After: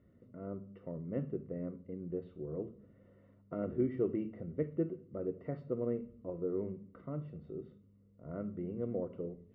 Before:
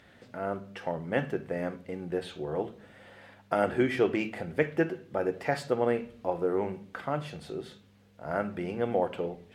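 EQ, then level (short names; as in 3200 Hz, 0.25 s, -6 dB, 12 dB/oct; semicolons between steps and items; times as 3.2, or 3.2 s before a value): running mean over 54 samples; air absorption 180 m; -3.0 dB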